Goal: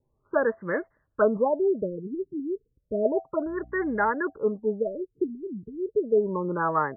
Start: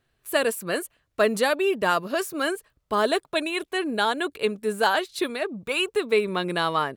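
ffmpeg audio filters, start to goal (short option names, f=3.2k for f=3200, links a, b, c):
-filter_complex "[0:a]acrossover=split=470|1200[a][b][c];[c]adynamicsmooth=sensitivity=6.5:basefreq=3k[d];[a][b][d]amix=inputs=3:normalize=0,asettb=1/sr,asplit=3[e][f][g];[e]atrim=end=3.464[h];[f]atrim=start=3.46:end=4.1,asetpts=PTS-STARTPTS,afade=t=in:d=0.004:c=qsin,afade=t=out:st=0.636:d=0.004:c=qsin,aeval=exprs='val(0)+0.00355*(sin(2*PI*60*n/s)+sin(2*PI*2*60*n/s)/2+sin(2*PI*3*60*n/s)/3+sin(2*PI*4*60*n/s)/4+sin(2*PI*5*60*n/s)/5)':c=same[i];[g]atrim=start=4.096[j];[h][i]acrossfade=d=0.004:c1=hsin:c2=qsin[k];[k][j]acrossfade=d=0.004:c1=qsin:c2=hsin,asuperstop=centerf=710:order=20:qfactor=7.7,afftfilt=real='re*lt(b*sr/1024,410*pow(2200/410,0.5+0.5*sin(2*PI*0.32*pts/sr)))':imag='im*lt(b*sr/1024,410*pow(2200/410,0.5+0.5*sin(2*PI*0.32*pts/sr)))':win_size=1024:overlap=0.75"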